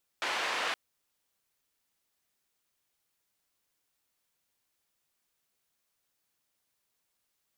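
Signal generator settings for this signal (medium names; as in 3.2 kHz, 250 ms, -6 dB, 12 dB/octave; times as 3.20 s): noise band 520–2500 Hz, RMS -32.5 dBFS 0.52 s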